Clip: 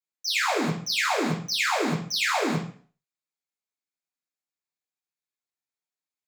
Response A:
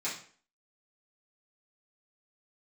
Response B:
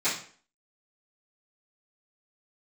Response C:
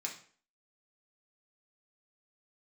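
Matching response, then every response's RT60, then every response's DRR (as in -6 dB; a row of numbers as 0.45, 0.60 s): A; 0.45, 0.45, 0.45 s; -10.5, -17.5, -1.5 dB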